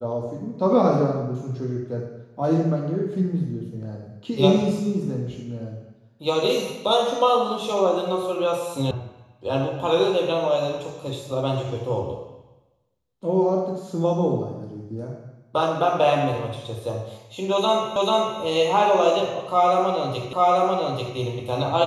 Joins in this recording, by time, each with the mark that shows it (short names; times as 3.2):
8.91 sound cut off
17.96 repeat of the last 0.44 s
20.33 repeat of the last 0.84 s